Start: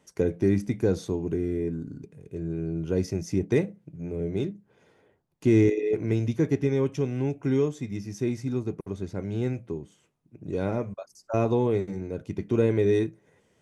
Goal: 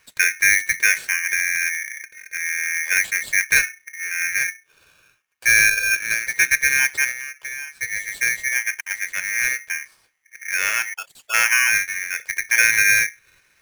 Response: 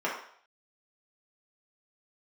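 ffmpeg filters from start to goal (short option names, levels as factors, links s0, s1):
-filter_complex "[0:a]asettb=1/sr,asplit=3[s0][s1][s2];[s0]atrim=end=4.504[s3];[s1]atrim=start=4.5:end=6.34,asetpts=PTS-STARTPTS,afade=t=in:d=0.004:c=qsin,afade=t=out:st=1.836:d=0.004:c=qsin,highpass=230[s4];[s2]atrim=start=6.336[s5];[s3][s4]acrossfade=d=0.004:c1=hsin:c2=qsin[s6];[s6][s5]acrossfade=d=0.004:c1=qsin:c2=hsin,asettb=1/sr,asplit=3[s7][s8][s9];[s7]atrim=end=7.114[s10];[s8]atrim=start=7.11:end=7.81,asetpts=PTS-STARTPTS,afade=t=in:d=0.004:c=qsin,afade=t=out:st=0.696:d=0.004:c=qsin,acompressor=threshold=0.0141:ratio=5[s11];[s9]atrim=start=7.806[s12];[s10][s11]acrossfade=d=0.004:c1=hsin:c2=qsin[s13];[s13][s12]acrossfade=d=0.004:c1=qsin:c2=hsin,aeval=exprs='val(0)*sgn(sin(2*PI*2000*n/s))':c=same,volume=2"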